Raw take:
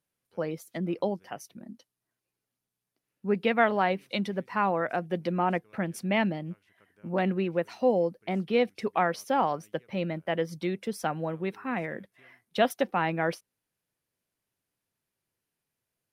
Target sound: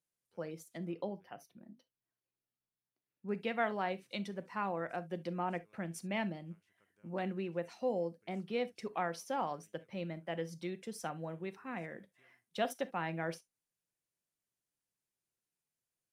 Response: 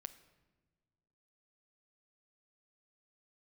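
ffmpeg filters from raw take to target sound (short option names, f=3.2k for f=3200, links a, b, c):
-filter_complex "[0:a]asetnsamples=n=441:p=0,asendcmd='0.92 equalizer g -7.5;3.29 equalizer g 8',equalizer=f=7.5k:t=o:w=1:g=7.5[a];[1:a]atrim=start_sample=2205,atrim=end_sample=3969,asetrate=52920,aresample=44100[b];[a][b]afir=irnorm=-1:irlink=0,volume=-4dB"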